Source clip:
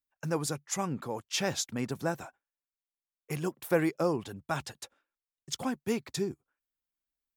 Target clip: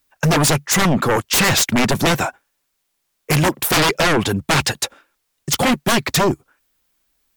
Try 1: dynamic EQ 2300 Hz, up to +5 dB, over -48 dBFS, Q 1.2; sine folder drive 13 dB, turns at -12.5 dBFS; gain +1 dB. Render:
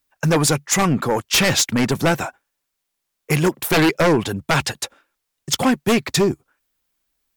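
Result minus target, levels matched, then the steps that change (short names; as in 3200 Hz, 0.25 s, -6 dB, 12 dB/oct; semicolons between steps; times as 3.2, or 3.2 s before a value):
sine folder: distortion -9 dB
change: sine folder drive 19 dB, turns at -12.5 dBFS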